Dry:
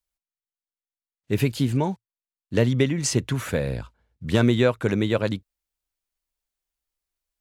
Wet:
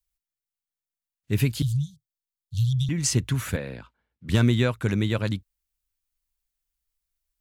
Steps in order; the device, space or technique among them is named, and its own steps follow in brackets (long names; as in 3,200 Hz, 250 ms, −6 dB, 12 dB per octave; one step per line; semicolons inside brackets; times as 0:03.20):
smiley-face EQ (low-shelf EQ 100 Hz +8.5 dB; parametric band 530 Hz −7 dB 1.7 octaves; high-shelf EQ 9,200 Hz +5.5 dB)
0:01.62–0:02.89: Chebyshev band-stop filter 150–3,300 Hz, order 5
0:03.56–0:04.29: three-way crossover with the lows and the highs turned down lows −19 dB, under 200 Hz, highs −15 dB, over 3,900 Hz
level −1 dB